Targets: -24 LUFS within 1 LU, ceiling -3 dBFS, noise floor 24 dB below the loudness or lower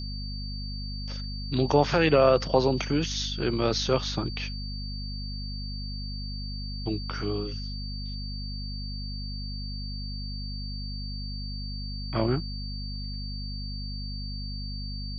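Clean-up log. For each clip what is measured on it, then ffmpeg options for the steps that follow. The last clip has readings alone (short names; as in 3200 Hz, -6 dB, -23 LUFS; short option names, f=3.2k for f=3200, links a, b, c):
hum 50 Hz; harmonics up to 250 Hz; hum level -33 dBFS; steady tone 4600 Hz; tone level -39 dBFS; loudness -30.0 LUFS; peak -7.5 dBFS; loudness target -24.0 LUFS
-> -af "bandreject=f=50:t=h:w=6,bandreject=f=100:t=h:w=6,bandreject=f=150:t=h:w=6,bandreject=f=200:t=h:w=6,bandreject=f=250:t=h:w=6"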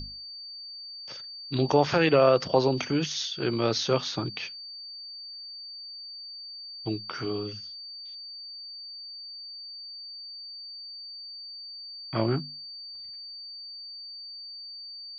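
hum none; steady tone 4600 Hz; tone level -39 dBFS
-> -af "bandreject=f=4.6k:w=30"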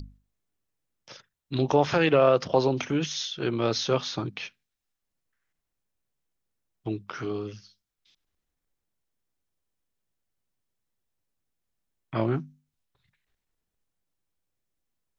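steady tone none; loudness -26.5 LUFS; peak -8.5 dBFS; loudness target -24.0 LUFS
-> -af "volume=2.5dB"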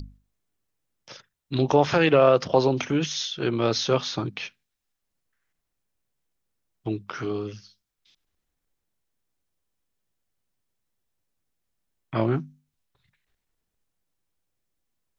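loudness -24.0 LUFS; peak -6.0 dBFS; noise floor -81 dBFS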